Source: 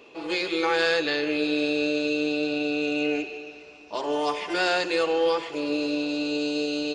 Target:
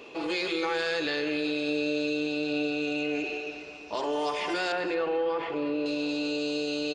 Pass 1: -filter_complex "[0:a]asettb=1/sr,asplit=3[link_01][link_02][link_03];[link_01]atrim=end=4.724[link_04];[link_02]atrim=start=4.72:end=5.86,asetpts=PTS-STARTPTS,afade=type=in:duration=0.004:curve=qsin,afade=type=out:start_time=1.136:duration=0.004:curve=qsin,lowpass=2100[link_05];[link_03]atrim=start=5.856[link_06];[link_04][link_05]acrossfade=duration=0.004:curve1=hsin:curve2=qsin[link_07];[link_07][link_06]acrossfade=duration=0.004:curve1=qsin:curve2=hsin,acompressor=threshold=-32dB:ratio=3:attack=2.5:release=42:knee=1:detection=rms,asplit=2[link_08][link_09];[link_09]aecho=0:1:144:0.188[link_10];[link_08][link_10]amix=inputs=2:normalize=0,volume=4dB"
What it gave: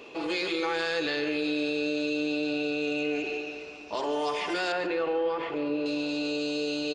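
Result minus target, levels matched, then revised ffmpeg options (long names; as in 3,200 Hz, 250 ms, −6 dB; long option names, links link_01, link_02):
echo 78 ms early
-filter_complex "[0:a]asettb=1/sr,asplit=3[link_01][link_02][link_03];[link_01]atrim=end=4.724[link_04];[link_02]atrim=start=4.72:end=5.86,asetpts=PTS-STARTPTS,afade=type=in:duration=0.004:curve=qsin,afade=type=out:start_time=1.136:duration=0.004:curve=qsin,lowpass=2100[link_05];[link_03]atrim=start=5.856[link_06];[link_04][link_05]acrossfade=duration=0.004:curve1=hsin:curve2=qsin[link_07];[link_07][link_06]acrossfade=duration=0.004:curve1=qsin:curve2=hsin,acompressor=threshold=-32dB:ratio=3:attack=2.5:release=42:knee=1:detection=rms,asplit=2[link_08][link_09];[link_09]aecho=0:1:222:0.188[link_10];[link_08][link_10]amix=inputs=2:normalize=0,volume=4dB"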